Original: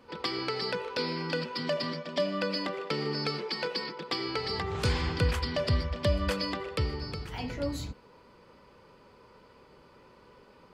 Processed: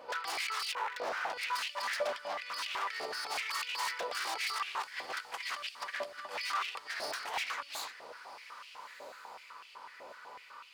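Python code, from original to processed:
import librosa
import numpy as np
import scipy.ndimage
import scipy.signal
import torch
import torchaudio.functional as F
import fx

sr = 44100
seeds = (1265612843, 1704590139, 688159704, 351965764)

p1 = fx.peak_eq(x, sr, hz=4600.0, db=-13.5, octaves=2.2, at=(0.72, 1.34))
p2 = fx.over_compress(p1, sr, threshold_db=-35.0, ratio=-0.5)
p3 = fx.add_hum(p2, sr, base_hz=60, snr_db=12)
p4 = 10.0 ** (-33.0 / 20.0) * (np.abs((p3 / 10.0 ** (-33.0 / 20.0) + 3.0) % 4.0 - 2.0) - 1.0)
p5 = p4 + fx.echo_diffused(p4, sr, ms=1350, feedback_pct=47, wet_db=-16.0, dry=0)
y = fx.filter_held_highpass(p5, sr, hz=8.0, low_hz=630.0, high_hz=2700.0)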